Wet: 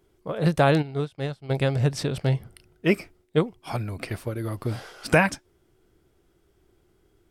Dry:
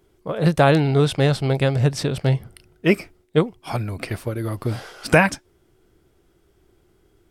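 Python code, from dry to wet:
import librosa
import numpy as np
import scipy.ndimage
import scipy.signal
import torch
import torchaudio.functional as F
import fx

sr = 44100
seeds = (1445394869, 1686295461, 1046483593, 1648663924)

y = fx.upward_expand(x, sr, threshold_db=-27.0, expansion=2.5, at=(0.81, 1.49), fade=0.02)
y = y * 10.0 ** (-4.0 / 20.0)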